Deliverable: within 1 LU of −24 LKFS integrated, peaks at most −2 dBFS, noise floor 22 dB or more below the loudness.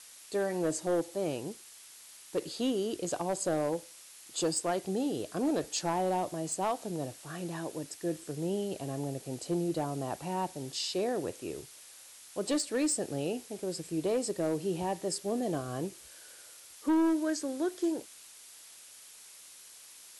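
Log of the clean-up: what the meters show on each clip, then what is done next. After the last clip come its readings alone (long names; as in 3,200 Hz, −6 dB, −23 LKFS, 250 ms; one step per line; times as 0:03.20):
share of clipped samples 1.0%; peaks flattened at −23.5 dBFS; background noise floor −53 dBFS; target noise floor −56 dBFS; integrated loudness −33.5 LKFS; sample peak −23.5 dBFS; target loudness −24.0 LKFS
→ clipped peaks rebuilt −23.5 dBFS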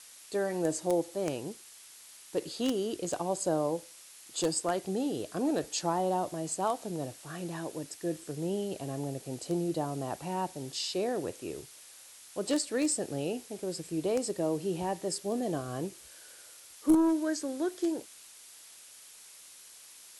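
share of clipped samples 0.0%; background noise floor −53 dBFS; target noise floor −55 dBFS
→ broadband denoise 6 dB, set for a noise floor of −53 dBFS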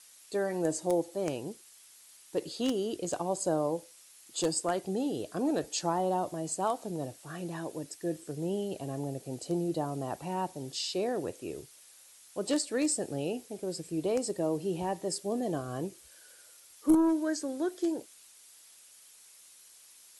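background noise floor −57 dBFS; integrated loudness −33.0 LKFS; sample peak −14.5 dBFS; target loudness −24.0 LKFS
→ level +9 dB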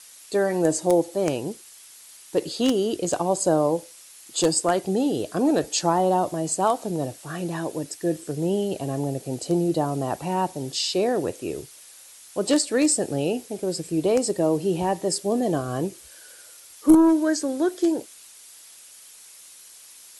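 integrated loudness −24.0 LKFS; sample peak −5.5 dBFS; background noise floor −48 dBFS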